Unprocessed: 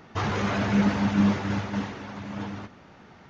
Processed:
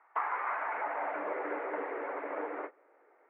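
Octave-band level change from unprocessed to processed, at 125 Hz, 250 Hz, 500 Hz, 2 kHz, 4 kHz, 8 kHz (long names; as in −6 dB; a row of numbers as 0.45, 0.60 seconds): below −40 dB, −22.5 dB, −2.5 dB, −5.0 dB, below −25 dB, can't be measured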